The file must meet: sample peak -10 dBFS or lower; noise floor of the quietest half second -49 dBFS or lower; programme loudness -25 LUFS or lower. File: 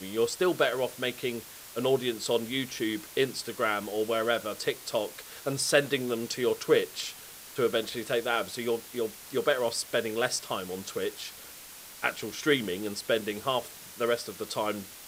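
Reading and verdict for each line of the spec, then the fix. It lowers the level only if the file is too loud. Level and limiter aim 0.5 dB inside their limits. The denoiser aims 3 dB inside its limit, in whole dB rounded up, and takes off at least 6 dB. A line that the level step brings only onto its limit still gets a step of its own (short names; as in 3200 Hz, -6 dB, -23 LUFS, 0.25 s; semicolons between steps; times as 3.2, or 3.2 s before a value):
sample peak -8.0 dBFS: fail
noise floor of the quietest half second -47 dBFS: fail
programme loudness -30.0 LUFS: OK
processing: denoiser 6 dB, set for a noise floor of -47 dBFS; limiter -10.5 dBFS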